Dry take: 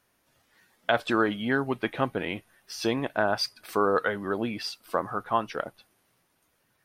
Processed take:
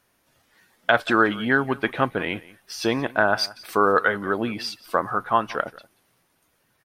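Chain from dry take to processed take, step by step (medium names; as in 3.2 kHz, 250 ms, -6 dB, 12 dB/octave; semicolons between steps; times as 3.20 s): dynamic bell 1.5 kHz, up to +5 dB, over -40 dBFS, Q 1.4; on a send: delay 178 ms -20.5 dB; on the sum: trim +3.5 dB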